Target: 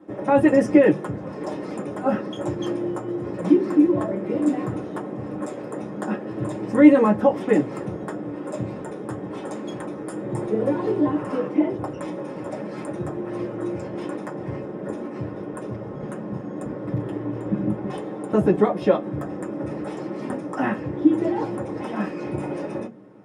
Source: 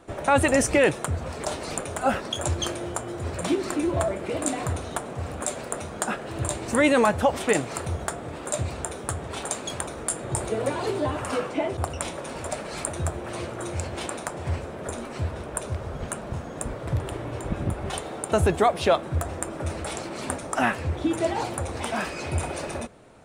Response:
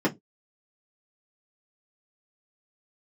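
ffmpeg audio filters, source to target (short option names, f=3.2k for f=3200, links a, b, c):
-filter_complex "[1:a]atrim=start_sample=2205[a];[0:a][a]afir=irnorm=-1:irlink=0,volume=-15dB"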